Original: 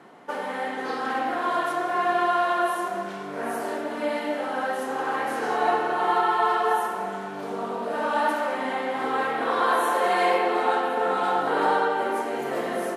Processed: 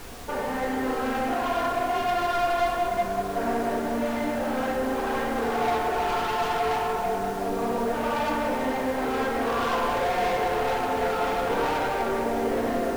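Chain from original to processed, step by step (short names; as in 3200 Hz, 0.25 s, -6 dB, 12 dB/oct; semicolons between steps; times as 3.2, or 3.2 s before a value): LPF 1300 Hz 6 dB/oct; analogue delay 0.188 s, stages 1024, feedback 80%, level -9 dB; soft clip -28 dBFS, distortion -8 dB; added noise pink -47 dBFS; reverb RT60 0.60 s, pre-delay 4 ms, DRR 4 dB; gain +3.5 dB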